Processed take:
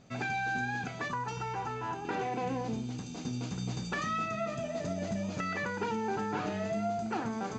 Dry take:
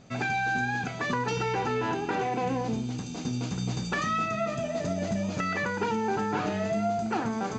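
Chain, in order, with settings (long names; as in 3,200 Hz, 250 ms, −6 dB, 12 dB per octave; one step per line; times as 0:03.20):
0:01.08–0:02.05: graphic EQ with 10 bands 250 Hz −7 dB, 500 Hz −7 dB, 1,000 Hz +4 dB, 2,000 Hz −5 dB, 4,000 Hz −6 dB
level −5 dB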